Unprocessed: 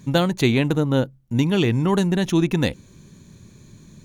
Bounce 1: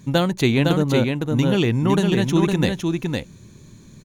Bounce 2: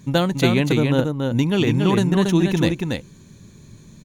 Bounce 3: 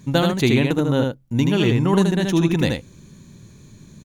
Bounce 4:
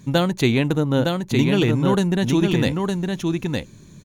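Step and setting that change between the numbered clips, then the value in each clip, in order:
delay, time: 509 ms, 281 ms, 78 ms, 911 ms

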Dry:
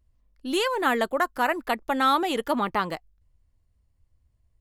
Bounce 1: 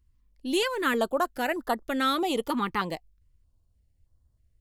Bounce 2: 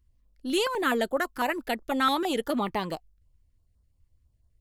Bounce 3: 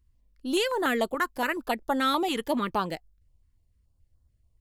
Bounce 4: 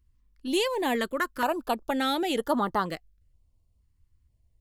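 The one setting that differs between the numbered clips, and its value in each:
step-sequenced notch, rate: 3.2 Hz, 12 Hz, 7 Hz, 2.1 Hz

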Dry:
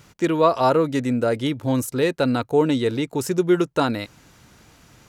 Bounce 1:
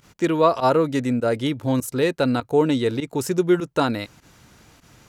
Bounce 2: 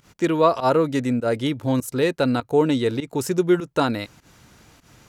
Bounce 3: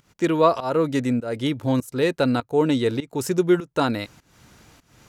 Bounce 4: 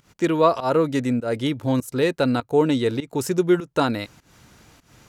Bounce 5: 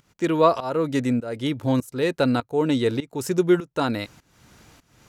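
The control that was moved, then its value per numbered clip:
volume shaper, release: 65 ms, 109 ms, 331 ms, 206 ms, 486 ms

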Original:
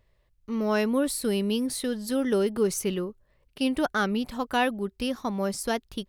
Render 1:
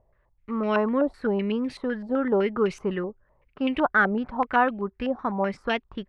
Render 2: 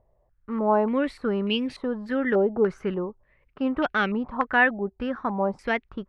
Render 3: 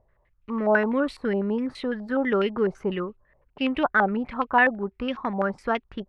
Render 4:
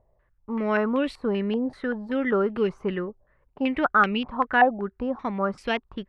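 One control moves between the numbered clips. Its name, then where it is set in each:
step-sequenced low-pass, rate: 7.9 Hz, 3.4 Hz, 12 Hz, 5.2 Hz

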